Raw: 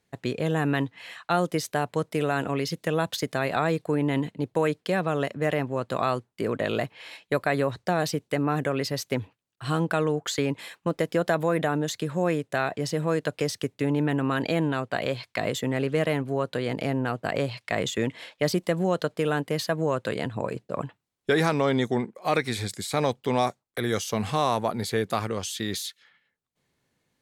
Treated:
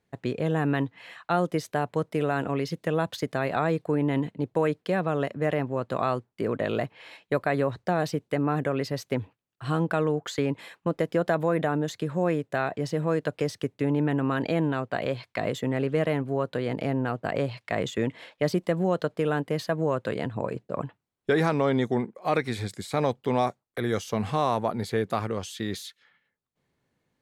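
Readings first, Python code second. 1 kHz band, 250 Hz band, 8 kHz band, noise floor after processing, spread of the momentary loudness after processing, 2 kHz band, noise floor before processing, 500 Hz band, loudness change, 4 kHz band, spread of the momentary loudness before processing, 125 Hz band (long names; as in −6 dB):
−1.0 dB, 0.0 dB, −8.0 dB, −79 dBFS, 7 LU, −2.5 dB, −77 dBFS, −0.5 dB, −0.5 dB, −5.5 dB, 6 LU, 0.0 dB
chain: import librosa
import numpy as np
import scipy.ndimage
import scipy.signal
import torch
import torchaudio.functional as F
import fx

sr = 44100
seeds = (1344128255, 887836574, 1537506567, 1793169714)

y = fx.high_shelf(x, sr, hz=2800.0, db=-9.0)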